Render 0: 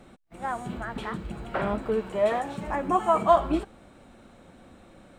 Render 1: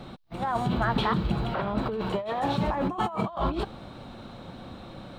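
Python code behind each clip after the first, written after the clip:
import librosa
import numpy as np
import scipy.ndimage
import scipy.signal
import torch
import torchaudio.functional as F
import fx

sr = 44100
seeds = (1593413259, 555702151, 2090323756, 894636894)

y = fx.graphic_eq(x, sr, hz=(125, 1000, 2000, 4000, 8000), db=(8, 5, -4, 11, -11))
y = fx.over_compress(y, sr, threshold_db=-30.0, ratio=-1.0)
y = y * librosa.db_to_amplitude(1.5)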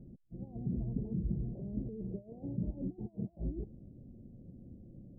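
y = scipy.ndimage.gaussian_filter1d(x, 24.0, mode='constant')
y = y * librosa.db_to_amplitude(-6.0)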